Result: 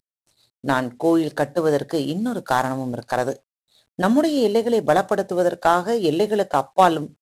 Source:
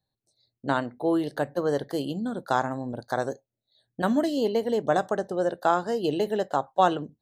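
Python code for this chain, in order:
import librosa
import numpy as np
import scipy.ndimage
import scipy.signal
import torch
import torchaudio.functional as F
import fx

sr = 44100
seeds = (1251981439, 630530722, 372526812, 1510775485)

y = fx.cvsd(x, sr, bps=64000)
y = fx.high_shelf(y, sr, hz=8300.0, db=5.5, at=(2.24, 2.72))
y = F.gain(torch.from_numpy(y), 6.5).numpy()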